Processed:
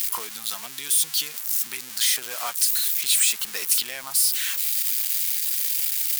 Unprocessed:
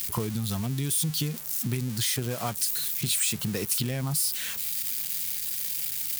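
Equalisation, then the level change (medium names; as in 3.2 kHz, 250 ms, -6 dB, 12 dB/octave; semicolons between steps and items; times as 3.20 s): high-pass 1.1 kHz 12 dB/octave; +6.5 dB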